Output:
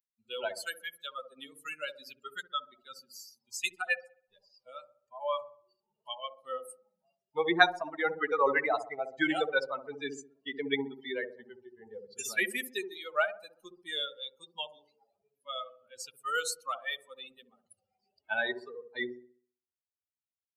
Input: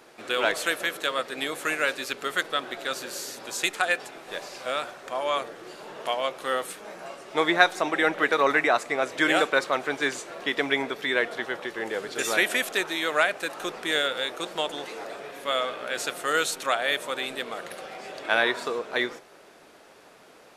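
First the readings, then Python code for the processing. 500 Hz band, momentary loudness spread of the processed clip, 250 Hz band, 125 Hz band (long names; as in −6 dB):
−8.0 dB, 20 LU, −7.0 dB, −8.0 dB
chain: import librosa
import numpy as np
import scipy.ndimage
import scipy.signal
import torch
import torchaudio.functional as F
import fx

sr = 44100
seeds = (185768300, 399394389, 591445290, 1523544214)

p1 = fx.bin_expand(x, sr, power=3.0)
p2 = fx.low_shelf(p1, sr, hz=77.0, db=-10.0)
y = p2 + fx.echo_wet_lowpass(p2, sr, ms=65, feedback_pct=41, hz=530.0, wet_db=-4, dry=0)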